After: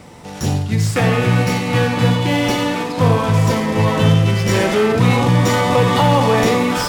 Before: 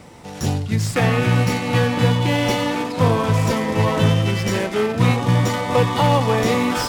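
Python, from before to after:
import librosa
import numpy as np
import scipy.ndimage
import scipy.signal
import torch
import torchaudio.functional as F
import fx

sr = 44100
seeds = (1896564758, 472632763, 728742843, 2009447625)

p1 = fx.rev_schroeder(x, sr, rt60_s=0.57, comb_ms=38, drr_db=8.0)
p2 = 10.0 ** (-15.5 / 20.0) * np.tanh(p1 / 10.0 ** (-15.5 / 20.0))
p3 = p1 + (p2 * 10.0 ** (-10.0 / 20.0))
y = fx.env_flatten(p3, sr, amount_pct=50, at=(4.49, 6.49))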